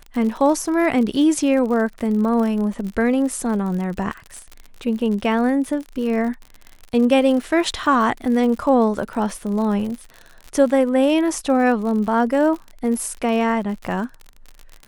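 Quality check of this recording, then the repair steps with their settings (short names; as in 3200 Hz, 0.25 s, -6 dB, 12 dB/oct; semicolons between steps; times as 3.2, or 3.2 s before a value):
crackle 59/s -28 dBFS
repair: de-click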